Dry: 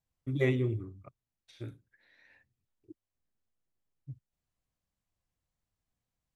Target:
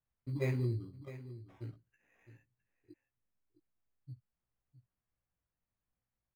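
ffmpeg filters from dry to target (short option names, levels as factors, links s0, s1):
-filter_complex "[0:a]acrusher=samples=10:mix=1:aa=0.000001,bass=f=250:g=3,treble=f=4000:g=-13,asplit=2[s0][s1];[s1]adelay=17,volume=0.631[s2];[s0][s2]amix=inputs=2:normalize=0,aecho=1:1:660:0.188,volume=0.398"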